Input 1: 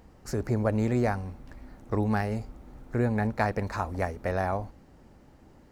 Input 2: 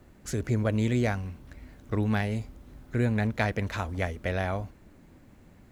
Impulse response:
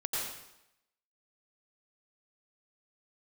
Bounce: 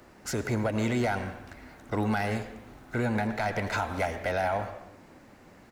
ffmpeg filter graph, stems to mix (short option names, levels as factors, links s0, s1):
-filter_complex "[0:a]highpass=580,tiltshelf=f=1400:g=-5.5,bandreject=f=3200:w=12,volume=1.06[s0];[1:a]asplit=2[s1][s2];[s2]highpass=f=720:p=1,volume=7.94,asoftclip=type=tanh:threshold=0.266[s3];[s1][s3]amix=inputs=2:normalize=0,lowpass=f=1600:p=1,volume=0.501,volume=-1,adelay=1.4,volume=0.631,asplit=2[s4][s5];[s5]volume=0.224[s6];[2:a]atrim=start_sample=2205[s7];[s6][s7]afir=irnorm=-1:irlink=0[s8];[s0][s4][s8]amix=inputs=3:normalize=0,alimiter=limit=0.119:level=0:latency=1:release=89"